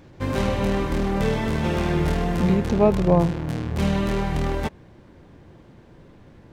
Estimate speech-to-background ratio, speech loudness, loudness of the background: 3.5 dB, −21.5 LKFS, −25.0 LKFS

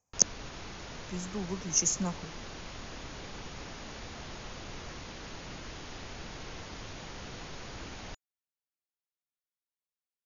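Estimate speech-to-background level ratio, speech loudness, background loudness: 14.0 dB, −30.0 LKFS, −44.0 LKFS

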